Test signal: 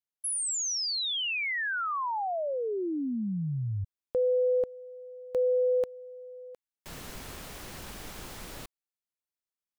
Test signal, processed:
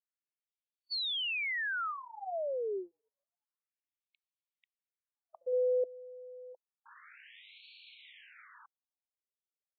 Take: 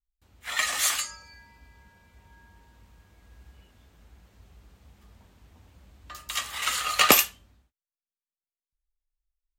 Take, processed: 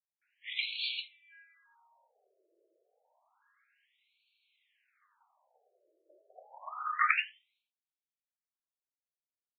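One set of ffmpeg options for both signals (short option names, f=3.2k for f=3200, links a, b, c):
-af "afftfilt=real='re*between(b*sr/1024,460*pow(3200/460,0.5+0.5*sin(2*PI*0.29*pts/sr))/1.41,460*pow(3200/460,0.5+0.5*sin(2*PI*0.29*pts/sr))*1.41)':imag='im*between(b*sr/1024,460*pow(3200/460,0.5+0.5*sin(2*PI*0.29*pts/sr))/1.41,460*pow(3200/460,0.5+0.5*sin(2*PI*0.29*pts/sr))*1.41)':win_size=1024:overlap=0.75,volume=-3.5dB"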